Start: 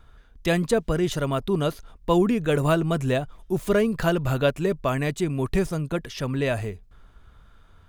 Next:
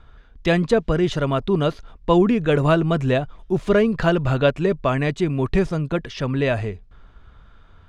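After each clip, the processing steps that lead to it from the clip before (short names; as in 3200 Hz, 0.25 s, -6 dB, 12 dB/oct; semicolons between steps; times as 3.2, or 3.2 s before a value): LPF 4500 Hz 12 dB/oct; gain +4 dB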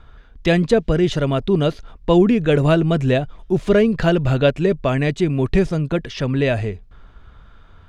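dynamic EQ 1100 Hz, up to -7 dB, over -38 dBFS, Q 1.6; gain +3 dB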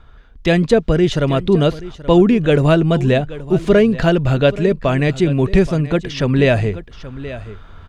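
echo 0.828 s -17 dB; AGC gain up to 7.5 dB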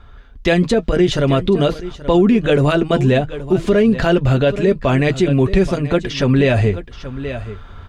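notch comb 160 Hz; maximiser +8.5 dB; gain -4.5 dB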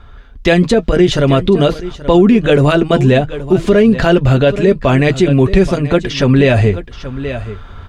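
gain +4 dB; Opus 256 kbps 48000 Hz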